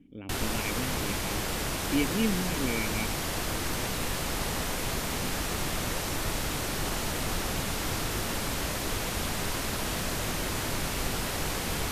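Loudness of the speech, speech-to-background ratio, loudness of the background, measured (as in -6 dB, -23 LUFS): -33.5 LUFS, -2.5 dB, -31.0 LUFS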